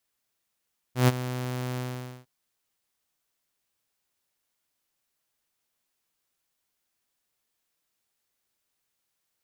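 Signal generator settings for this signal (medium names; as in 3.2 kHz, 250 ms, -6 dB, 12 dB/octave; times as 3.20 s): ADSR saw 126 Hz, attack 129 ms, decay 30 ms, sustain -14.5 dB, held 0.83 s, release 475 ms -12.5 dBFS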